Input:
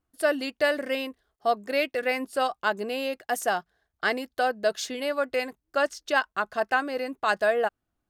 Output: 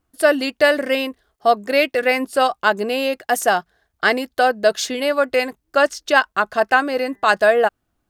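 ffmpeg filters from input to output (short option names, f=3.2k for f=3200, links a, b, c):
-filter_complex "[0:a]asettb=1/sr,asplit=3[a][b][c];[a]atrim=end=6.914[d];[b]atrim=start=6.91:end=7.34,asetpts=PTS-STARTPTS,afade=t=in:d=0.004:c=qsin,afade=t=out:st=0.426:d=0.004:c=qsin,bandreject=f=199.9:t=h:w=4,bandreject=f=399.8:t=h:w=4,bandreject=f=599.7:t=h:w=4,bandreject=f=799.6:t=h:w=4,bandreject=f=999.5:t=h:w=4,bandreject=f=1.1994k:t=h:w=4,bandreject=f=1.3993k:t=h:w=4,bandreject=f=1.5992k:t=h:w=4,bandreject=f=1.7991k:t=h:w=4,bandreject=f=1.999k:t=h:w=4[e];[c]atrim=start=7.336[f];[d][e]acrossfade=d=0.004:c1=hsin:c2=qsin[g];[g][f]acrossfade=d=0.004:c1=qsin:c2=hsin,volume=9dB"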